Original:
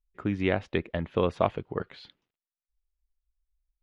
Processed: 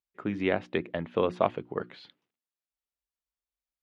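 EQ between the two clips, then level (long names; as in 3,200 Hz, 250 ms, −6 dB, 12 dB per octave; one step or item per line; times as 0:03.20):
high-pass filter 160 Hz 12 dB per octave
high-shelf EQ 4,800 Hz −5 dB
mains-hum notches 60/120/180/240/300/360 Hz
0.0 dB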